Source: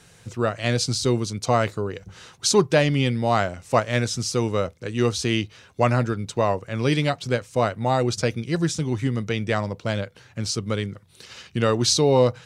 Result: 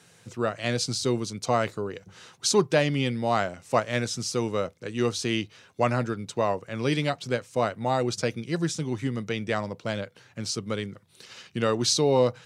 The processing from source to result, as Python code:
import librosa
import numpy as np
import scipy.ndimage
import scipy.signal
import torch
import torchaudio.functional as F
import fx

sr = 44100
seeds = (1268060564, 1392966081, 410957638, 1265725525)

y = scipy.signal.sosfilt(scipy.signal.butter(2, 130.0, 'highpass', fs=sr, output='sos'), x)
y = y * 10.0 ** (-3.5 / 20.0)